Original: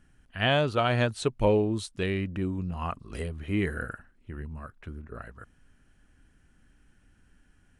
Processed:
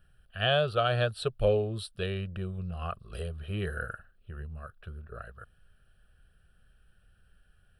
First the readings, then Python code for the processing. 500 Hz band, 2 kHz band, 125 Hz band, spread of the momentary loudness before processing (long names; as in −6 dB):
−1.5 dB, −3.0 dB, −2.0 dB, 19 LU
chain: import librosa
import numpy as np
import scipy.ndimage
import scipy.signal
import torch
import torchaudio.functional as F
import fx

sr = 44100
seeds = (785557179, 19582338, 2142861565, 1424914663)

y = fx.high_shelf(x, sr, hz=9200.0, db=5.5)
y = fx.fixed_phaser(y, sr, hz=1400.0, stages=8)